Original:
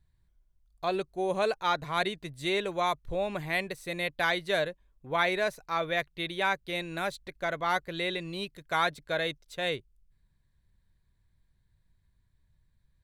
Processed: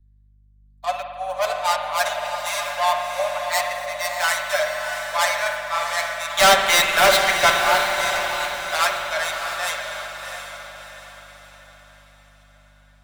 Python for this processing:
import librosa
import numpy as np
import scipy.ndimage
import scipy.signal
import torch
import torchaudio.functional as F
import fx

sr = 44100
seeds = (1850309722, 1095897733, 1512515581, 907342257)

p1 = fx.tracing_dist(x, sr, depth_ms=0.24)
p2 = scipy.signal.sosfilt(scipy.signal.butter(12, 570.0, 'highpass', fs=sr, output='sos'), p1)
p3 = p2 + 0.75 * np.pad(p2, (int(6.8 * sr / 1000.0), 0))[:len(p2)]
p4 = fx.leveller(p3, sr, passes=5, at=(6.37, 7.5))
p5 = fx.rider(p4, sr, range_db=4, speed_s=2.0)
p6 = p4 + (p5 * librosa.db_to_amplitude(-3.0))
p7 = fx.rev_spring(p6, sr, rt60_s=3.5, pass_ms=(52,), chirp_ms=40, drr_db=3.0)
p8 = fx.add_hum(p7, sr, base_hz=50, snr_db=27)
p9 = fx.echo_diffused(p8, sr, ms=686, feedback_pct=54, wet_db=-5)
p10 = fx.band_widen(p9, sr, depth_pct=40)
y = p10 * librosa.db_to_amplitude(-2.0)